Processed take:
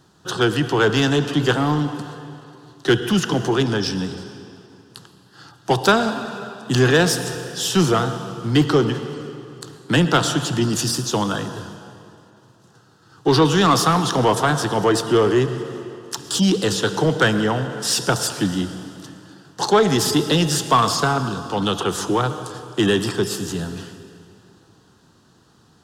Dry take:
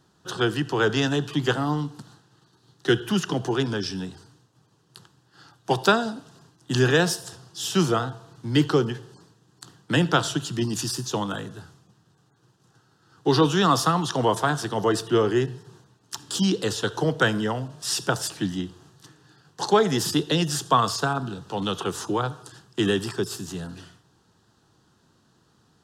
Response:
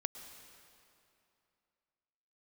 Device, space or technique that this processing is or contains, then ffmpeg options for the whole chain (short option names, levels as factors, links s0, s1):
saturated reverb return: -filter_complex "[0:a]asplit=2[s0][s1];[1:a]atrim=start_sample=2205[s2];[s1][s2]afir=irnorm=-1:irlink=0,asoftclip=type=tanh:threshold=0.0944,volume=1.88[s3];[s0][s3]amix=inputs=2:normalize=0,volume=0.841"